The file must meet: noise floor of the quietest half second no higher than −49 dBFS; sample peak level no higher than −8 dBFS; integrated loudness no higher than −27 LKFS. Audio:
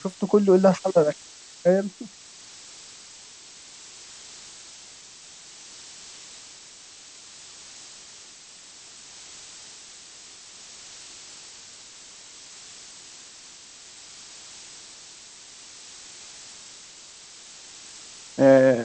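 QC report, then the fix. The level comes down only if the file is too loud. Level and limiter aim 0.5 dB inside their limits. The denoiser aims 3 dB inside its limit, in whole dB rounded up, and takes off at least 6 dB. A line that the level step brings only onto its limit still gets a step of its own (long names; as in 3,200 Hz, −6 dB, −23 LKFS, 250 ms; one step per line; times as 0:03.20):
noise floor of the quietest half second −47 dBFS: out of spec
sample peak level −4.5 dBFS: out of spec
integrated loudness −20.5 LKFS: out of spec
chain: level −7 dB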